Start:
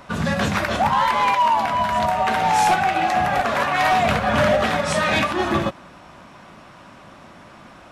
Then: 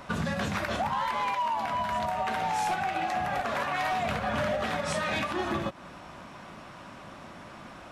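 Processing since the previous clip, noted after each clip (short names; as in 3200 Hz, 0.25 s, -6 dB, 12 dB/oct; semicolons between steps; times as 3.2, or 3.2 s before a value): compressor 6:1, threshold -26 dBFS, peak gain reduction 10.5 dB; gain -1.5 dB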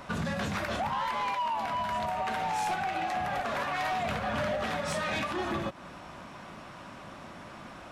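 soft clip -25 dBFS, distortion -19 dB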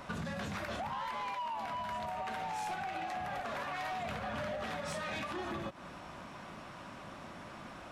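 compressor, threshold -34 dBFS, peak gain reduction 5.5 dB; gain -2.5 dB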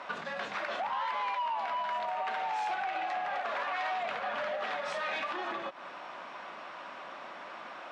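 BPF 530–3800 Hz; gain +6 dB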